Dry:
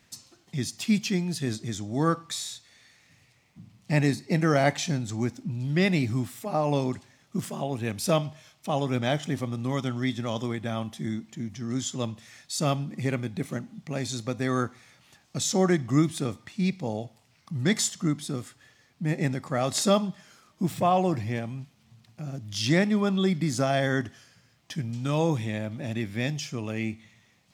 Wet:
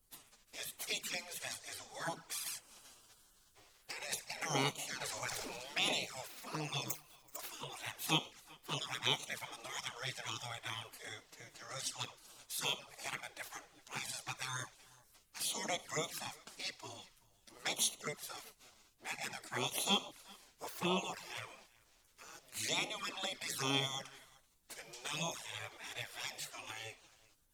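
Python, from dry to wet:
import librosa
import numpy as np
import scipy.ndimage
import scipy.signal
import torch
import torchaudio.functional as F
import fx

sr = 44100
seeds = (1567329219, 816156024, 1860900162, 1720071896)

y = fx.tilt_eq(x, sr, slope=-1.5)
y = fx.over_compress(y, sr, threshold_db=-25.0, ratio=-1.0, at=(2.46, 4.38))
y = scipy.signal.sosfilt(scipy.signal.butter(2, 440.0, 'highpass', fs=sr, output='sos'), y)
y = fx.high_shelf(y, sr, hz=5400.0, db=9.5)
y = fx.resample_bad(y, sr, factor=6, down='filtered', up='zero_stuff', at=(6.9, 7.36))
y = fx.spec_gate(y, sr, threshold_db=-15, keep='weak')
y = y + 10.0 ** (-24.0 / 20.0) * np.pad(y, (int(380 * sr / 1000.0), 0))[:len(y)]
y = fx.env_flanger(y, sr, rest_ms=11.9, full_db=-36.0)
y = fx.dmg_noise_colour(y, sr, seeds[0], colour='brown', level_db=-79.0)
y = fx.sustainer(y, sr, db_per_s=23.0, at=(5.0, 5.95), fade=0.02)
y = y * 10.0 ** (3.5 / 20.0)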